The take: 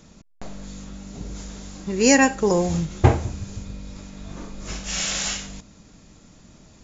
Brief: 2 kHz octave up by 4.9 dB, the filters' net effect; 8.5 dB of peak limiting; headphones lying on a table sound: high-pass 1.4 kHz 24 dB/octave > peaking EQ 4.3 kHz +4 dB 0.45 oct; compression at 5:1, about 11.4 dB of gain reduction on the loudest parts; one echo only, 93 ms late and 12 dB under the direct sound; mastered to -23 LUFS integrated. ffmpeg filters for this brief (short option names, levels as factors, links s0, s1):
-af "equalizer=f=2000:t=o:g=6,acompressor=threshold=0.0891:ratio=5,alimiter=limit=0.1:level=0:latency=1,highpass=f=1400:w=0.5412,highpass=f=1400:w=1.3066,equalizer=f=4300:t=o:w=0.45:g=4,aecho=1:1:93:0.251,volume=3.55"